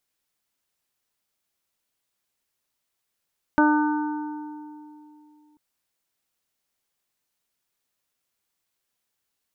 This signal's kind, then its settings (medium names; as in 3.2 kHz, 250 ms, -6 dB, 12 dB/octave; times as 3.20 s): additive tone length 1.99 s, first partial 300 Hz, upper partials -7/-3/-11.5/-5.5 dB, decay 2.90 s, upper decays 0.46/2.50/1.62/1.54 s, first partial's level -16 dB